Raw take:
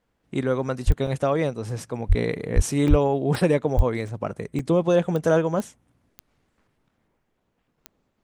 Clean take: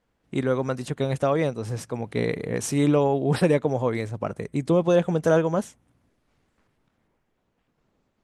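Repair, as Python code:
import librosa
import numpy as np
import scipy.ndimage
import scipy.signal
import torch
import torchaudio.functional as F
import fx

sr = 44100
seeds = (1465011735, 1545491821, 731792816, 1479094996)

y = fx.fix_declick_ar(x, sr, threshold=10.0)
y = fx.fix_deplosive(y, sr, at_s=(0.86, 2.08, 2.55, 2.89, 3.76))
y = fx.fix_interpolate(y, sr, at_s=(1.07, 2.88, 3.36, 4.08, 4.59, 7.4, 7.76), length_ms=2.8)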